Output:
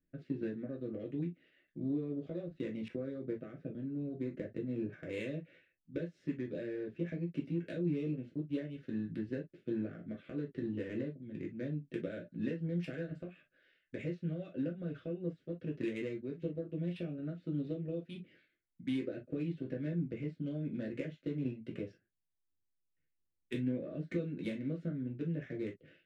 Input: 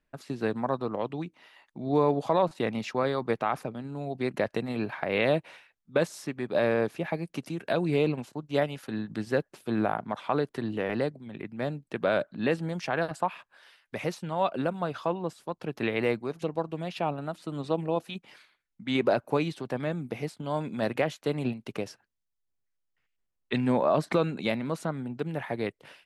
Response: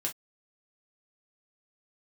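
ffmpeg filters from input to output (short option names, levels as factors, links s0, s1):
-filter_complex "[0:a]acompressor=threshold=0.0316:ratio=6,asuperstop=centerf=920:order=4:qfactor=0.66,highshelf=f=2900:g=-11,adynamicsmooth=sensitivity=7:basefreq=2100[s0];[1:a]atrim=start_sample=2205[s1];[s0][s1]afir=irnorm=-1:irlink=0,asettb=1/sr,asplit=3[s2][s3][s4];[s2]atrim=end=2.884[s5];[s3]atrim=start=2.88:end=5.09,asetpts=PTS-STARTPTS,afade=t=in:d=0.004:c=qsin,afade=t=out:st=2.206:d=0.004:c=qsin,adynamicequalizer=threshold=0.00158:dfrequency=1500:dqfactor=0.7:tfrequency=1500:tqfactor=0.7:attack=5:release=100:ratio=0.375:range=4:mode=cutabove:tftype=highshelf[s6];[s4]atrim=start=5.086[s7];[s5][s6]acrossfade=d=0.004:c1=hsin:c2=qsin[s8];[s8][s7]acrossfade=d=0.004:c1=qsin:c2=hsin,volume=0.631"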